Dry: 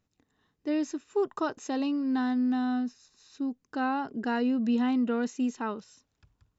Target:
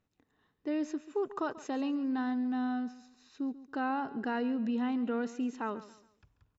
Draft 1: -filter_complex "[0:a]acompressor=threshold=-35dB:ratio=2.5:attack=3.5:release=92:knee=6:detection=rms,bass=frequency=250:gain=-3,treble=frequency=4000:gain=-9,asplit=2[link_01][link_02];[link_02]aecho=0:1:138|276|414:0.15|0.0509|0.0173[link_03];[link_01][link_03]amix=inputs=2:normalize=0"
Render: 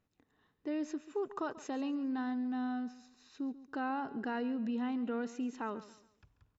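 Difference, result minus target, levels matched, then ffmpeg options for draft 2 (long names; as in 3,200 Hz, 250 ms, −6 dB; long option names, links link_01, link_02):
downward compressor: peak gain reduction +3.5 dB
-filter_complex "[0:a]acompressor=threshold=-29dB:ratio=2.5:attack=3.5:release=92:knee=6:detection=rms,bass=frequency=250:gain=-3,treble=frequency=4000:gain=-9,asplit=2[link_01][link_02];[link_02]aecho=0:1:138|276|414:0.15|0.0509|0.0173[link_03];[link_01][link_03]amix=inputs=2:normalize=0"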